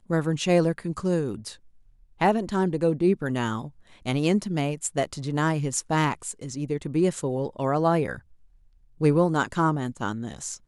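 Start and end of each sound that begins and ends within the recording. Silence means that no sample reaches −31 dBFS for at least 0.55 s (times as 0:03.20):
0:02.21–0:08.16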